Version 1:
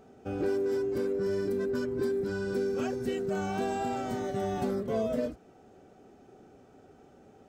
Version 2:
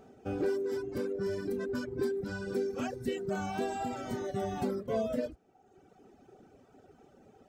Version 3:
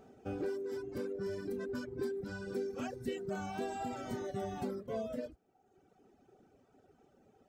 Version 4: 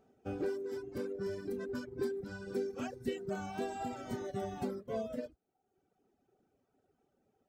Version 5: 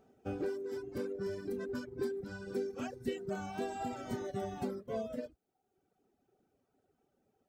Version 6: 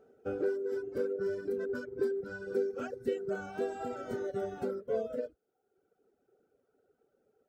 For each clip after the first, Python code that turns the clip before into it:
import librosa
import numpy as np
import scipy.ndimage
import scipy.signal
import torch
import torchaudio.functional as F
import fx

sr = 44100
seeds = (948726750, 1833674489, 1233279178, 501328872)

y1 = fx.dereverb_blind(x, sr, rt60_s=1.2)
y2 = fx.rider(y1, sr, range_db=10, speed_s=0.5)
y2 = F.gain(torch.from_numpy(y2), -5.0).numpy()
y3 = fx.upward_expand(y2, sr, threshold_db=-59.0, expansion=1.5)
y3 = F.gain(torch.from_numpy(y3), 2.5).numpy()
y4 = fx.rider(y3, sr, range_db=10, speed_s=0.5)
y5 = fx.small_body(y4, sr, hz=(470.0, 1400.0), ring_ms=20, db=15)
y5 = F.gain(torch.from_numpy(y5), -5.0).numpy()